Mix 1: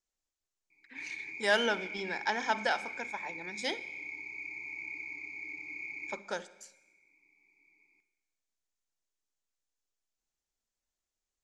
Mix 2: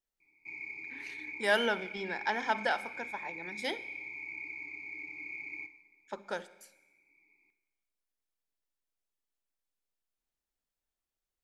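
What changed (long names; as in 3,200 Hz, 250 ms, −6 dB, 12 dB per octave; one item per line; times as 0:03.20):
background: entry −0.50 s
master: remove low-pass with resonance 6,900 Hz, resonance Q 2.6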